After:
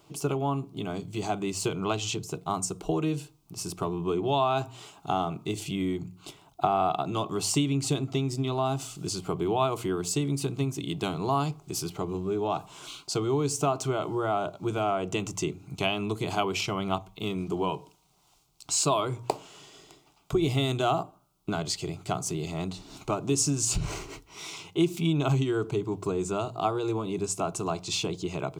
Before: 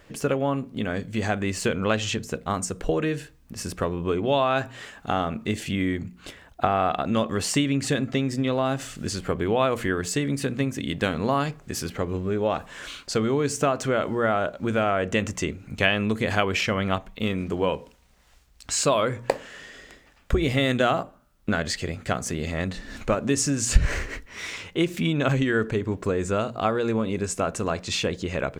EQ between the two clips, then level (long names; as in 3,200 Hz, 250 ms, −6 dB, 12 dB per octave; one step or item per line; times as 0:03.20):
high-pass filter 59 Hz
mains-hum notches 50/100 Hz
phaser with its sweep stopped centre 350 Hz, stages 8
0.0 dB